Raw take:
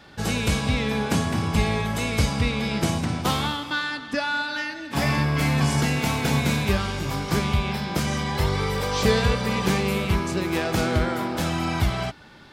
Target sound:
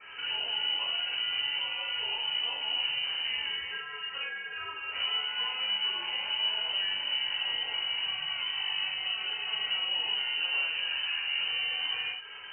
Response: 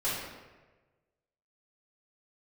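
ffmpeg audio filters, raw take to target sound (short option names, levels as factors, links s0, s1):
-filter_complex "[0:a]alimiter=limit=0.0841:level=0:latency=1:release=23,acrossover=split=170|440[s0][s1][s2];[s0]acompressor=threshold=0.0126:ratio=4[s3];[s1]acompressor=threshold=0.00891:ratio=4[s4];[s2]acompressor=threshold=0.00708:ratio=4[s5];[s3][s4][s5]amix=inputs=3:normalize=0,flanger=delay=7.9:depth=3.4:regen=-50:speed=1.4:shape=triangular[s6];[1:a]atrim=start_sample=2205,atrim=end_sample=6174,asetrate=57330,aresample=44100[s7];[s6][s7]afir=irnorm=-1:irlink=0,lowpass=f=2600:t=q:w=0.5098,lowpass=f=2600:t=q:w=0.6013,lowpass=f=2600:t=q:w=0.9,lowpass=f=2600:t=q:w=2.563,afreqshift=-3100,volume=1.41"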